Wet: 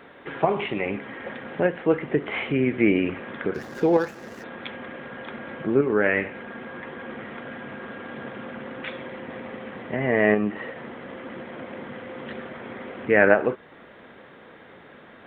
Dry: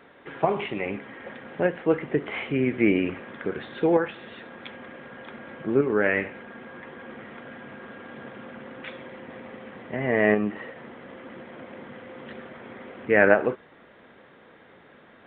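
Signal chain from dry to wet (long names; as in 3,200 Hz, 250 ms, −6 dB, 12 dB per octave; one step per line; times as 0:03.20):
0:03.54–0:04.44: running median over 15 samples
in parallel at −2.5 dB: downward compressor, threshold −32 dBFS, peak gain reduction 19.5 dB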